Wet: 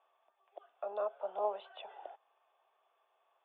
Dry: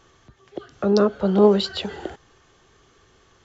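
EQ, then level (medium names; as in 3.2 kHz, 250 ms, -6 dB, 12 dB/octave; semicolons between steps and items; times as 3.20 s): ladder high-pass 590 Hz, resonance 65%; rippled Chebyshev low-pass 3.6 kHz, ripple 9 dB; distance through air 56 m; -4.0 dB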